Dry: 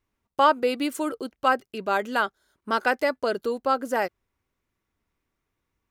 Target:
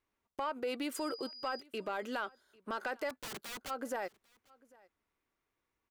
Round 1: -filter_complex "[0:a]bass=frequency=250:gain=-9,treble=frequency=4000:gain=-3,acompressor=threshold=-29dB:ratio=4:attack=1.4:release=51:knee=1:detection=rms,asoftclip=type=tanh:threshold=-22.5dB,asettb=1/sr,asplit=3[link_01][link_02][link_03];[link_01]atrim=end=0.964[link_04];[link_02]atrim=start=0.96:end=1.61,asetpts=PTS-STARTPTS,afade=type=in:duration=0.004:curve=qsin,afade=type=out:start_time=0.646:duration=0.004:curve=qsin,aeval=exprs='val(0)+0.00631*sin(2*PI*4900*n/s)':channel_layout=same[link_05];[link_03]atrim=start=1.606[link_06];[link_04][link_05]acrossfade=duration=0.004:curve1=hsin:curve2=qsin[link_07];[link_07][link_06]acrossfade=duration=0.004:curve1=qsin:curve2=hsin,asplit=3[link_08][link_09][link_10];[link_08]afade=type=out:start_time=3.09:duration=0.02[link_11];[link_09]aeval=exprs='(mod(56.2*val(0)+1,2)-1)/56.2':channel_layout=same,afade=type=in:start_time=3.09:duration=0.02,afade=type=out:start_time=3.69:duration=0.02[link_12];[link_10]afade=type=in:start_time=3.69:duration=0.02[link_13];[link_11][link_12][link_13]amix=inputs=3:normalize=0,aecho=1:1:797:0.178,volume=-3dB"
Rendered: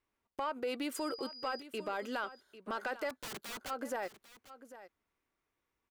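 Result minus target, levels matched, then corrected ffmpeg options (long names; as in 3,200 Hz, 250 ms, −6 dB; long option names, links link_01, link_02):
echo-to-direct +10.5 dB
-filter_complex "[0:a]bass=frequency=250:gain=-9,treble=frequency=4000:gain=-3,acompressor=threshold=-29dB:ratio=4:attack=1.4:release=51:knee=1:detection=rms,asoftclip=type=tanh:threshold=-22.5dB,asettb=1/sr,asplit=3[link_01][link_02][link_03];[link_01]atrim=end=0.964[link_04];[link_02]atrim=start=0.96:end=1.61,asetpts=PTS-STARTPTS,afade=type=in:duration=0.004:curve=qsin,afade=type=out:start_time=0.646:duration=0.004:curve=qsin,aeval=exprs='val(0)+0.00631*sin(2*PI*4900*n/s)':channel_layout=same[link_05];[link_03]atrim=start=1.606[link_06];[link_04][link_05]acrossfade=duration=0.004:curve1=hsin:curve2=qsin[link_07];[link_07][link_06]acrossfade=duration=0.004:curve1=qsin:curve2=hsin,asplit=3[link_08][link_09][link_10];[link_08]afade=type=out:start_time=3.09:duration=0.02[link_11];[link_09]aeval=exprs='(mod(56.2*val(0)+1,2)-1)/56.2':channel_layout=same,afade=type=in:start_time=3.09:duration=0.02,afade=type=out:start_time=3.69:duration=0.02[link_12];[link_10]afade=type=in:start_time=3.69:duration=0.02[link_13];[link_11][link_12][link_13]amix=inputs=3:normalize=0,aecho=1:1:797:0.0531,volume=-3dB"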